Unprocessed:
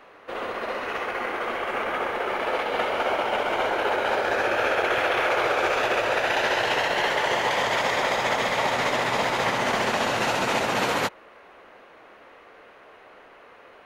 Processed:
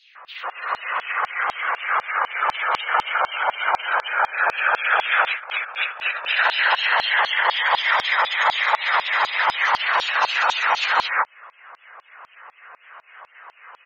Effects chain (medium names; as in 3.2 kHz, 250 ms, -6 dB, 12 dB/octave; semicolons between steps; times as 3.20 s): in parallel at -8 dB: saturation -25.5 dBFS, distortion -10 dB; on the sum: three bands offset in time highs, lows, mids 90/150 ms, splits 170/2400 Hz; spectral gate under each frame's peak -20 dB strong; LFO high-pass saw down 4 Hz 880–4400 Hz; 5.27–6.33 s: compressor with a negative ratio -29 dBFS, ratio -0.5; trim +3.5 dB